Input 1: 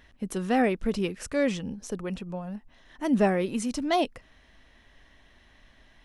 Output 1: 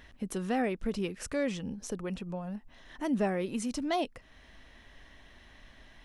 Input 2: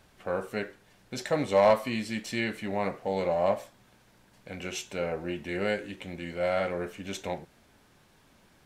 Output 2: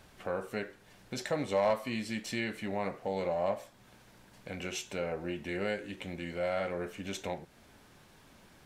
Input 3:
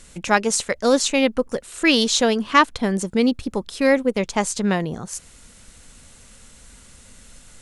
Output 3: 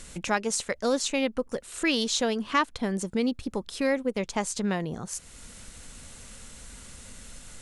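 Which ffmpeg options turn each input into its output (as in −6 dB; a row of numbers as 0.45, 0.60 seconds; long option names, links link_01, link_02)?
-af "acompressor=threshold=-45dB:ratio=1.5,volume=2.5dB"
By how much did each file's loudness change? −6.0, −5.0, −8.5 LU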